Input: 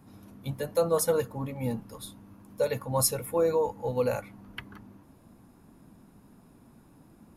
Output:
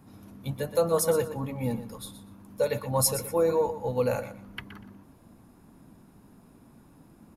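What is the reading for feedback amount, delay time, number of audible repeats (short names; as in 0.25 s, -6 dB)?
20%, 0.121 s, 2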